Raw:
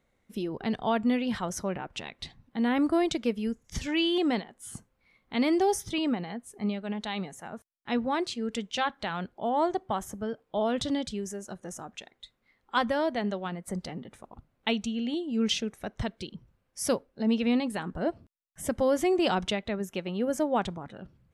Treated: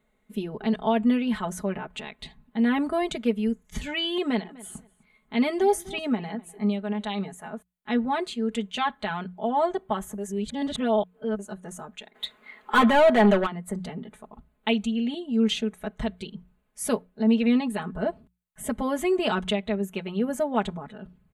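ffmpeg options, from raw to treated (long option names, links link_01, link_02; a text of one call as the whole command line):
ffmpeg -i in.wav -filter_complex "[0:a]asettb=1/sr,asplit=3[link_01][link_02][link_03];[link_01]atrim=end=4.204[link_04];[link_02]atrim=start=4.2:end=7.14,asetpts=PTS-STARTPTS,afade=type=in:duration=0.004:curve=qsin,afade=type=out:start_time=2.936:duration=0.004:curve=qsin,asplit=2[link_05][link_06];[link_06]adelay=250,lowpass=frequency=4000:poles=1,volume=-20.5dB,asplit=2[link_07][link_08];[link_08]adelay=250,lowpass=frequency=4000:poles=1,volume=0.21[link_09];[link_05][link_07][link_09]amix=inputs=3:normalize=0,atrim=end_sample=129654[link_10];[link_03]atrim=start=7.136[link_11];[link_04][link_10]acrossfade=duration=0.004:curve1=hsin:curve2=qsin[link_12];[link_12][link_11]acrossfade=duration=0.004:curve1=qsin:curve2=hsin,asplit=3[link_13][link_14][link_15];[link_13]afade=type=out:start_time=12.14:duration=0.02[link_16];[link_14]asplit=2[link_17][link_18];[link_18]highpass=frequency=720:poles=1,volume=28dB,asoftclip=type=tanh:threshold=-13dB[link_19];[link_17][link_19]amix=inputs=2:normalize=0,lowpass=frequency=2400:poles=1,volume=-6dB,afade=type=in:start_time=12.14:duration=0.02,afade=type=out:start_time=13.45:duration=0.02[link_20];[link_15]afade=type=in:start_time=13.45:duration=0.02[link_21];[link_16][link_20][link_21]amix=inputs=3:normalize=0,asplit=3[link_22][link_23][link_24];[link_22]atrim=end=10.182[link_25];[link_23]atrim=start=10.178:end=11.392,asetpts=PTS-STARTPTS,areverse[link_26];[link_24]atrim=start=11.388[link_27];[link_25][link_26]acrossfade=duration=0.004:curve1=hsin:curve2=hsin[link_28];[link_28][link_27]acrossfade=duration=0.004:curve1=hsin:curve2=hsin,equalizer=frequency=5400:width_type=o:width=0.4:gain=-14.5,bandreject=frequency=60:width_type=h:width=6,bandreject=frequency=120:width_type=h:width=6,bandreject=frequency=180:width_type=h:width=6,aecho=1:1:4.7:0.89" out.wav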